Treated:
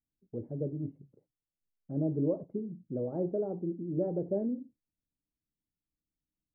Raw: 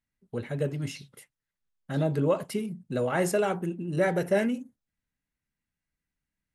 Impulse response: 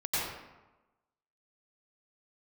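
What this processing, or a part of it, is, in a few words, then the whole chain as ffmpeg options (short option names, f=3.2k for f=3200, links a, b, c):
under water: -af "lowpass=f=590:w=0.5412,lowpass=f=590:w=1.3066,equalizer=f=310:t=o:w=0.28:g=9,volume=-6dB"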